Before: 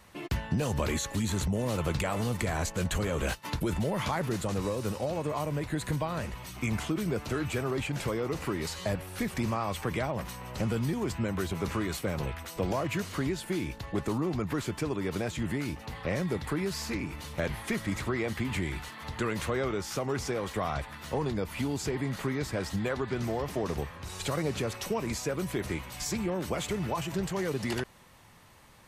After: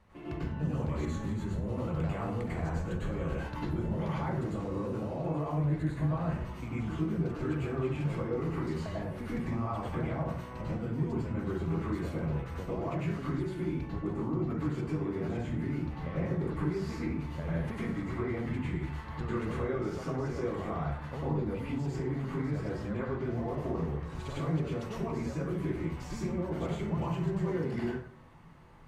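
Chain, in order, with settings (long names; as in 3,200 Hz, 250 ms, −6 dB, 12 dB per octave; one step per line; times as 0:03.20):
low-pass filter 1,400 Hz 6 dB per octave
low-shelf EQ 200 Hz +5.5 dB
downward compressor, threshold −30 dBFS, peak gain reduction 9 dB
dense smooth reverb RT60 0.6 s, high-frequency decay 0.6×, pre-delay 85 ms, DRR −8 dB
level −8 dB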